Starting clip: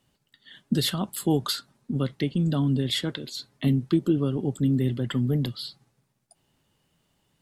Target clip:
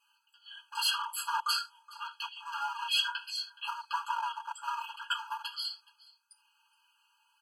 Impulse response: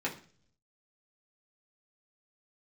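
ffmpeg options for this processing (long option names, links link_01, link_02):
-filter_complex "[0:a]aecho=1:1:421:0.0708,asettb=1/sr,asplit=3[link_01][link_02][link_03];[link_01]atrim=end=3.154[link_04];[link_02]atrim=start=3.15:end=4.68,asetpts=PTS-STARTPTS,afade=type=in:duration=0.004:curve=qsin,afade=type=out:start_time=1.526:duration=0.004:curve=qsin,acrossover=split=470|3000[link_05][link_06][link_07];[link_06]acompressor=threshold=-42dB:ratio=2[link_08];[link_05][link_08][link_07]amix=inputs=3:normalize=0[link_09];[link_03]atrim=start=4.676[link_10];[link_04][link_09]acrossfade=duration=0.004:curve1=hsin:curve2=qsin[link_11];[link_11][link_10]acrossfade=duration=0.004:curve1=qsin:curve2=hsin[link_12];[1:a]atrim=start_sample=2205,atrim=end_sample=4410[link_13];[link_12][link_13]afir=irnorm=-1:irlink=0,asplit=3[link_14][link_15][link_16];[link_14]afade=type=out:start_time=1.39:duration=0.02[link_17];[link_15]acompressor=threshold=-19dB:ratio=3,afade=type=in:start_time=1.39:duration=0.02,afade=type=out:start_time=2.45:duration=0.02[link_18];[link_16]afade=type=in:start_time=2.45:duration=0.02[link_19];[link_17][link_18][link_19]amix=inputs=3:normalize=0,asoftclip=type=hard:threshold=-16.5dB,bandreject=frequency=1100:width=14,aecho=1:1:4.3:0.87,afftfilt=real='re*eq(mod(floor(b*sr/1024/830),2),1)':imag='im*eq(mod(floor(b*sr/1024/830),2),1)':win_size=1024:overlap=0.75"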